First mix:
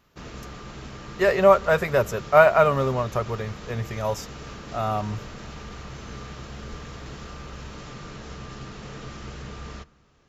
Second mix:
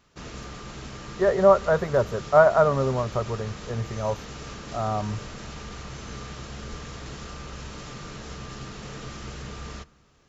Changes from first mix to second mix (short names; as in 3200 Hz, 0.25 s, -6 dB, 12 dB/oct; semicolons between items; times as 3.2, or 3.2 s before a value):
speech: add running mean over 17 samples; master: add high shelf 6300 Hz +8.5 dB